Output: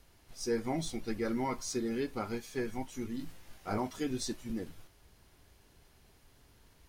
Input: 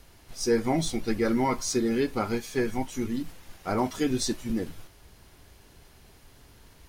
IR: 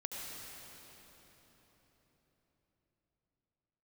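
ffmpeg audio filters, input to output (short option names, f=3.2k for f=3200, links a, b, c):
-filter_complex "[0:a]asettb=1/sr,asplit=3[a][b][c];[a]atrim=end=3.174[d];[b]atrim=start=3.17:end=3.78,asetpts=PTS-STARTPTS,afade=t=in:d=0.004:c=qsin,afade=t=out:st=0.606:d=0.004:c=qsin,asplit=2[e][f];[f]adelay=19,volume=-2dB[g];[e][g]amix=inputs=2:normalize=0,atrim=end_sample=26901[h];[c]atrim=start=3.776[i];[d][h]acrossfade=d=0.004:c1=hsin:c2=qsin[j];[j][i]acrossfade=d=0.004:c1=qsin:c2=hsin,volume=-8.5dB"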